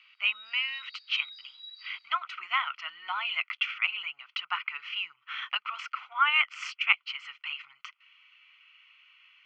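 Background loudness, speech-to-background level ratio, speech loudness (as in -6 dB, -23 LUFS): -47.0 LUFS, 16.5 dB, -30.5 LUFS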